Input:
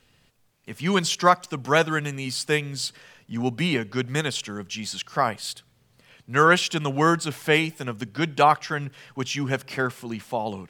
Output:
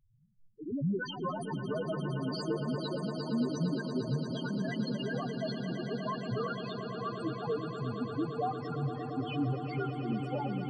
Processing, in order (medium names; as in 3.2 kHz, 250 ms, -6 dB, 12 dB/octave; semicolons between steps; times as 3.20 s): compression 16:1, threshold -26 dBFS, peak gain reduction 16 dB; ever faster or slower copies 125 ms, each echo +6 st, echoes 3; loudest bins only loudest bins 2; 6.47–7.20 s: high-pass 790 Hz; echo with a slow build-up 115 ms, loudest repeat 8, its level -12.5 dB; trim +1.5 dB